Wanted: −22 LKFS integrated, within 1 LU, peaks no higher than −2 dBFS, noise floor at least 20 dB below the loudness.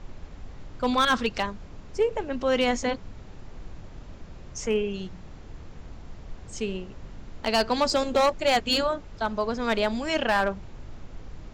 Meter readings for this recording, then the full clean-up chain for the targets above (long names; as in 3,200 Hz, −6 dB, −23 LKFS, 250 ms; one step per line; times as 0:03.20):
share of clipped samples 0.5%; peaks flattened at −15.5 dBFS; background noise floor −44 dBFS; target noise floor −46 dBFS; integrated loudness −26.0 LKFS; sample peak −15.5 dBFS; target loudness −22.0 LKFS
→ clipped peaks rebuilt −15.5 dBFS
noise reduction from a noise print 6 dB
level +4 dB